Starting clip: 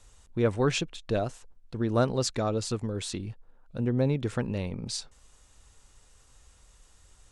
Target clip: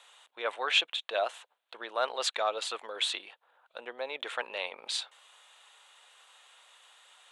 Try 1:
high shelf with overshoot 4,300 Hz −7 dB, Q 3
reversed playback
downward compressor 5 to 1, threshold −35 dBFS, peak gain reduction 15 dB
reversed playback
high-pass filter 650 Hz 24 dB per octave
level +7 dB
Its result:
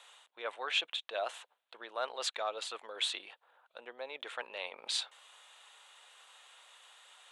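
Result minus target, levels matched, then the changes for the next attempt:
downward compressor: peak gain reduction +6.5 dB
change: downward compressor 5 to 1, threshold −27 dBFS, peak gain reduction 8.5 dB

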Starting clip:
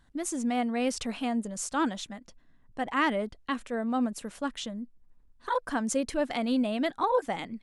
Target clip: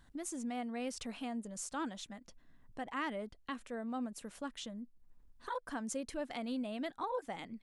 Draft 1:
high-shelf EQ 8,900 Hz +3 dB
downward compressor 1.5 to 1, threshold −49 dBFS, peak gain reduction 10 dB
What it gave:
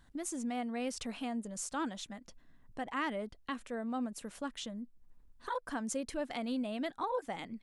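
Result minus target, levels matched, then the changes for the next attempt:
downward compressor: peak gain reduction −2.5 dB
change: downward compressor 1.5 to 1, threshold −57 dBFS, peak gain reduction 13 dB

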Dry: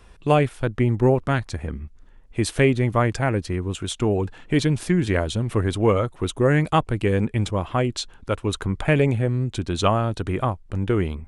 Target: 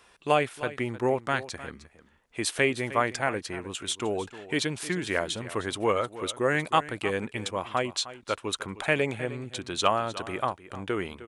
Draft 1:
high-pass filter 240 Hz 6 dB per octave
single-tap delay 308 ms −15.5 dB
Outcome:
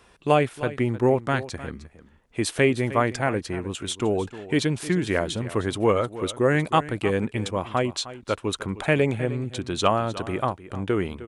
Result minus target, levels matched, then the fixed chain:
250 Hz band +3.5 dB
high-pass filter 820 Hz 6 dB per octave
single-tap delay 308 ms −15.5 dB

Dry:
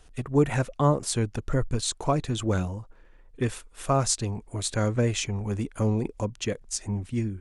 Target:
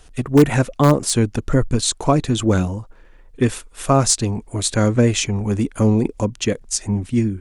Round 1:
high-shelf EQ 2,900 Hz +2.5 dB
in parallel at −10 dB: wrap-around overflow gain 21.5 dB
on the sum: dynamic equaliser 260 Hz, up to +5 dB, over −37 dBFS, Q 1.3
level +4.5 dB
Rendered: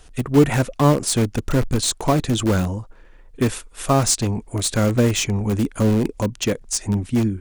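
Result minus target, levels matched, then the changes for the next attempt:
wrap-around overflow: distortion +18 dB
change: wrap-around overflow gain 11.5 dB

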